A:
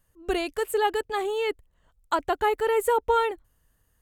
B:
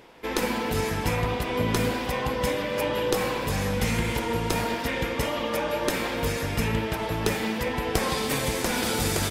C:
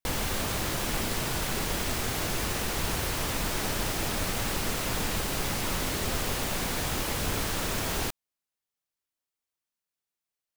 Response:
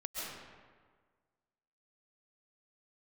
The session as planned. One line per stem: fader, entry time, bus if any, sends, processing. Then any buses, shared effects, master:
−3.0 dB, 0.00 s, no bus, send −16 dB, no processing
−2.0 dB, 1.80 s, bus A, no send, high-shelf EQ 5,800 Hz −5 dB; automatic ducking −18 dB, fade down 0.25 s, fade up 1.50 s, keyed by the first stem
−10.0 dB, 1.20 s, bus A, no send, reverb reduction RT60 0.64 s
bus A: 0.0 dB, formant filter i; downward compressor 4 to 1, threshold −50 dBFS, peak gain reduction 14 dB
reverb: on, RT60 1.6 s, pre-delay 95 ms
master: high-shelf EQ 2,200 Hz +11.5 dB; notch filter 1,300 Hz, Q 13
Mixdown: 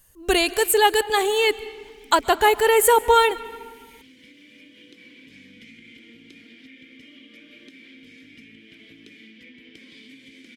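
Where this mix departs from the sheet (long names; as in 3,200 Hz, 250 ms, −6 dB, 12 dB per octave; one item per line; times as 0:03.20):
stem A −3.0 dB → +4.5 dB
stem B −2.0 dB → +4.5 dB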